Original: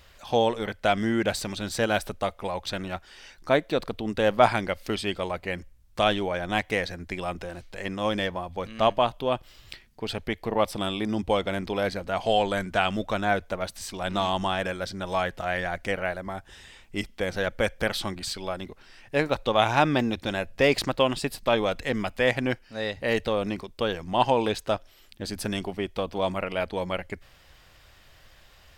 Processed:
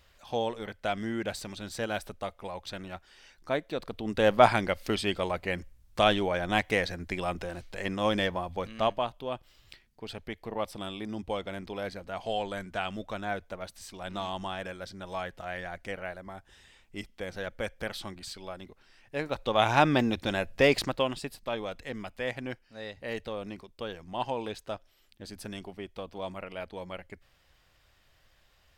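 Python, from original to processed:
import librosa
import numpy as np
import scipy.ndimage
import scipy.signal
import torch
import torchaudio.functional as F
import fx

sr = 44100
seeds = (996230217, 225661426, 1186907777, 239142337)

y = fx.gain(x, sr, db=fx.line((3.8, -8.0), (4.24, -0.5), (8.53, -0.5), (9.11, -9.0), (19.18, -9.0), (19.72, -1.0), (20.65, -1.0), (21.41, -10.5)))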